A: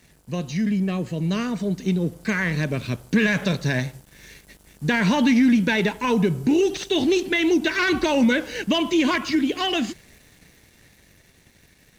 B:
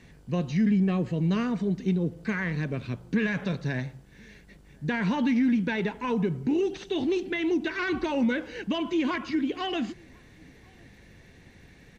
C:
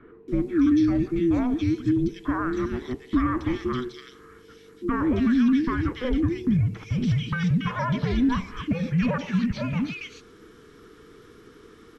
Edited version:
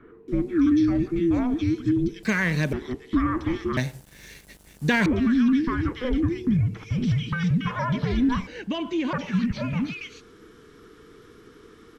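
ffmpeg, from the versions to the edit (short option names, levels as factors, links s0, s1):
-filter_complex "[0:a]asplit=2[s0][s1];[2:a]asplit=4[s2][s3][s4][s5];[s2]atrim=end=2.232[s6];[s0]atrim=start=2.228:end=2.732[s7];[s3]atrim=start=2.728:end=3.772[s8];[s1]atrim=start=3.768:end=5.062[s9];[s4]atrim=start=5.058:end=8.472[s10];[1:a]atrim=start=8.468:end=9.132[s11];[s5]atrim=start=9.128[s12];[s6][s7]acrossfade=d=0.004:c1=hsin:c2=hsin[s13];[s13][s8]acrossfade=d=0.004:c1=hsin:c2=hsin[s14];[s14][s9]acrossfade=d=0.004:c1=hsin:c2=hsin[s15];[s15][s10]acrossfade=d=0.004:c1=hsin:c2=hsin[s16];[s16][s11]acrossfade=d=0.004:c1=hsin:c2=hsin[s17];[s17][s12]acrossfade=d=0.004:c1=hsin:c2=hsin"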